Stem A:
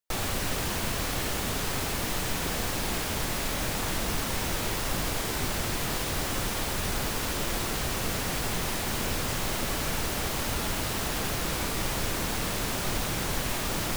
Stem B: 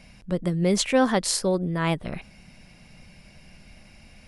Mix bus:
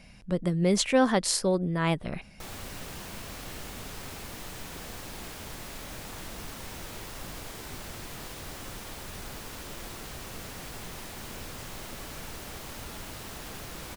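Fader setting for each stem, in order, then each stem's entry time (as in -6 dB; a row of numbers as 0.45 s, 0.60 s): -11.0 dB, -2.0 dB; 2.30 s, 0.00 s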